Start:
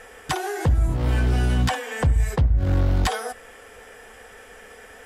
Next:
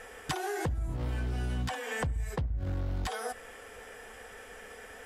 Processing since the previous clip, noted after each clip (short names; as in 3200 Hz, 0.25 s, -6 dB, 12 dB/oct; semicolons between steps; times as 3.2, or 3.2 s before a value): compressor 6:1, threshold -27 dBFS, peak gain reduction 12 dB; gain -3 dB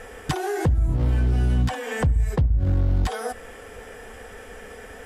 low shelf 450 Hz +9 dB; gain +4 dB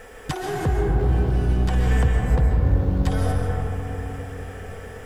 bit-crush 10-bit; digital reverb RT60 4.4 s, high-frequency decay 0.25×, pre-delay 95 ms, DRR -1 dB; gain -2.5 dB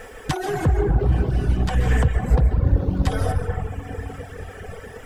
reverb removal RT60 1.6 s; Doppler distortion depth 0.24 ms; gain +4 dB